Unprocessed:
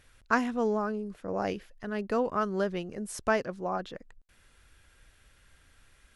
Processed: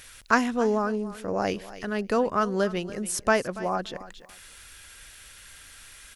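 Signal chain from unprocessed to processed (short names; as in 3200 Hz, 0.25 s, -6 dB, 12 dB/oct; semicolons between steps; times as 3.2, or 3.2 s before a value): high shelf 3700 Hz +7.5 dB; feedback echo 0.284 s, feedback 16%, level -17.5 dB; mismatched tape noise reduction encoder only; gain +4 dB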